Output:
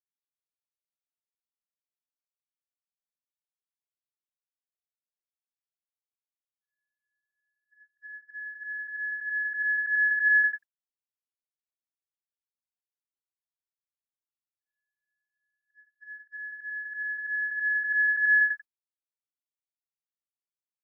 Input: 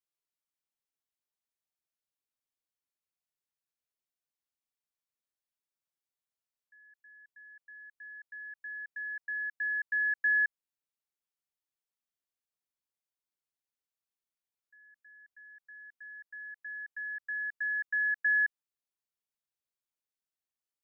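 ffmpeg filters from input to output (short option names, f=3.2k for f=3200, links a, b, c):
-af "afftfilt=real='re':imag='-im':win_size=8192:overlap=0.75,agate=range=-36dB:threshold=-50dB:ratio=16:detection=peak,volume=8dB"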